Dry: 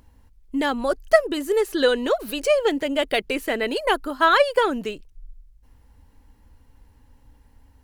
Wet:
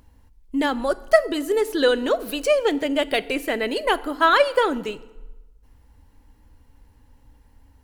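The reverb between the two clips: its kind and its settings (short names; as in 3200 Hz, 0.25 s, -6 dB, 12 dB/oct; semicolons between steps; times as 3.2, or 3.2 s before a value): FDN reverb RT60 1.1 s, low-frequency decay 1.05×, high-frequency decay 0.75×, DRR 15.5 dB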